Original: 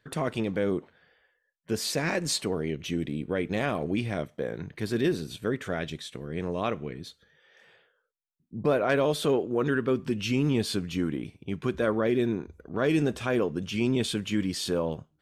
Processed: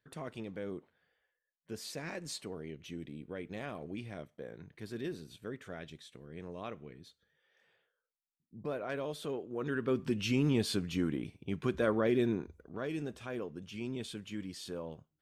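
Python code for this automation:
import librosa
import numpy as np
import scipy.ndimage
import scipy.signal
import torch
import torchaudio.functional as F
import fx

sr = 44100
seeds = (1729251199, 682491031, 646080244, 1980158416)

y = fx.gain(x, sr, db=fx.line((9.45, -13.5), (10.01, -4.0), (12.43, -4.0), (12.89, -13.5)))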